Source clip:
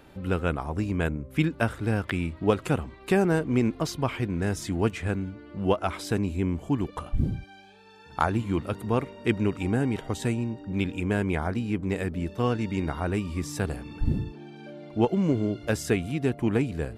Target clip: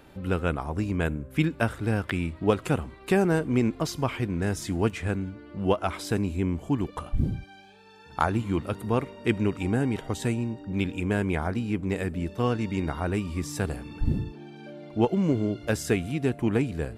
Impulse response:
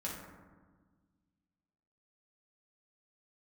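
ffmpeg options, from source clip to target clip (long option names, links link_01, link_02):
-filter_complex "[0:a]asplit=2[link_01][link_02];[link_02]aderivative[link_03];[1:a]atrim=start_sample=2205,asetrate=35721,aresample=44100[link_04];[link_03][link_04]afir=irnorm=-1:irlink=0,volume=-14dB[link_05];[link_01][link_05]amix=inputs=2:normalize=0"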